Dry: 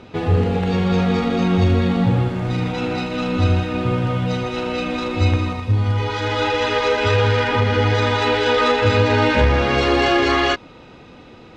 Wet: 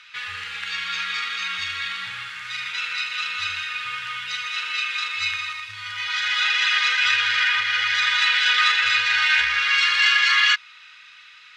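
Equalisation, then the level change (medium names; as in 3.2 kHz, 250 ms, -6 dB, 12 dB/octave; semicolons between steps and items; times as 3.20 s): inverse Chebyshev high-pass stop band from 760 Hz, stop band 40 dB; treble shelf 5.7 kHz -4.5 dB; +6.5 dB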